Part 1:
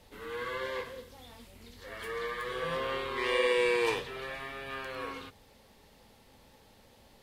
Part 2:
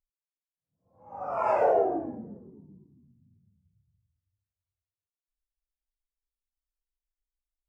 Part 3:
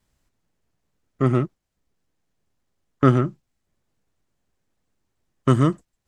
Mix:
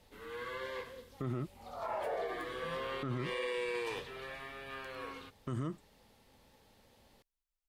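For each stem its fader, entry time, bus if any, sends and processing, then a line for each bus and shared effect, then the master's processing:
-5.5 dB, 0.00 s, no send, dry
-2.0 dB, 0.45 s, no send, auto duck -18 dB, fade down 1.10 s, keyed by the third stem
-10.5 dB, 0.00 s, no send, dry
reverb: off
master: limiter -29 dBFS, peak gain reduction 15.5 dB

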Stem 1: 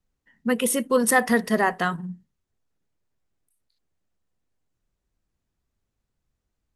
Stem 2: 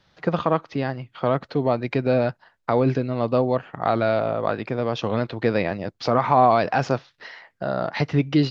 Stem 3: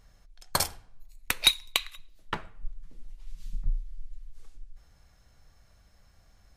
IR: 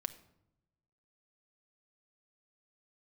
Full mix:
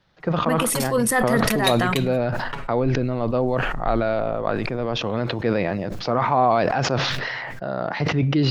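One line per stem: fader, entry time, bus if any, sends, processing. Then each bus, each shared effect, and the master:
-2.5 dB, 0.00 s, no send, dry
-4.5 dB, 0.00 s, send -10 dB, high shelf 3900 Hz -6 dB; sustainer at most 110 dB/s
-6.0 dB, 0.20 s, no send, comb 7.2 ms, depth 95%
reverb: on, RT60 0.85 s, pre-delay 6 ms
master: sustainer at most 22 dB/s

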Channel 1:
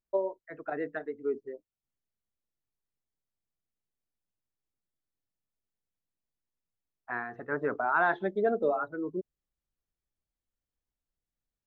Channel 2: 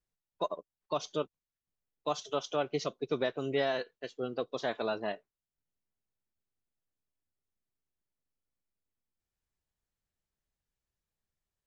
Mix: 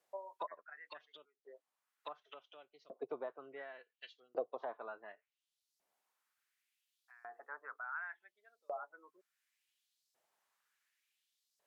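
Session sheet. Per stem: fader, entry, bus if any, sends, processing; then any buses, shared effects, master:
-16.0 dB, 0.00 s, no send, HPF 370 Hz 6 dB/oct; LPF 2200 Hz 24 dB/oct
-3.0 dB, 0.00 s, no send, high shelf 4700 Hz +9 dB; treble ducked by the level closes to 620 Hz, closed at -31.5 dBFS; low shelf 380 Hz +10.5 dB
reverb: off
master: tone controls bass +1 dB, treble -6 dB; LFO high-pass saw up 0.69 Hz 600–5200 Hz; three-band squash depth 40%

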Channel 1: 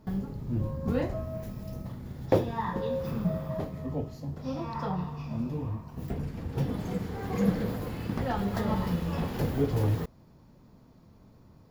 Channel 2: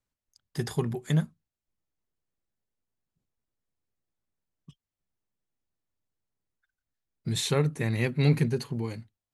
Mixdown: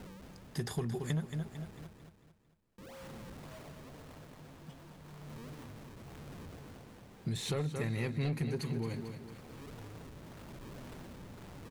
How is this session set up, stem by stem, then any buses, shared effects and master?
-16.5 dB, 0.00 s, muted 1.87–2.78, no send, echo send -7 dB, infinite clipping; decimation with a swept rate 36×, swing 160% 1.9 Hz; tremolo 0.93 Hz, depth 31%; auto duck -11 dB, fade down 0.85 s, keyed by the second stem
-1.0 dB, 0.00 s, no send, echo send -11 dB, de-esser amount 75%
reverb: off
echo: feedback echo 0.224 s, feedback 42%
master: soft clip -19 dBFS, distortion -15 dB; compressor 4:1, threshold -32 dBFS, peak gain reduction 8.5 dB

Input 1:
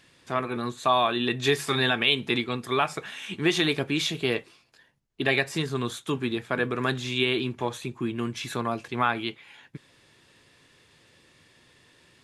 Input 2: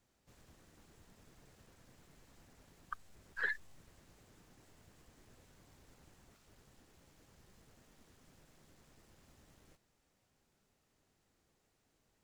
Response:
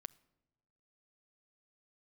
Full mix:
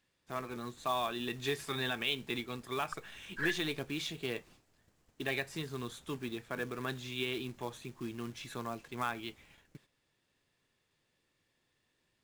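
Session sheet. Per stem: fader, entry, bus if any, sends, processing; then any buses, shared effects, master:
-11.5 dB, 0.00 s, no send, short-mantissa float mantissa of 2-bit
+0.5 dB, 0.00 s, no send, dry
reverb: off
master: gate -59 dBFS, range -9 dB

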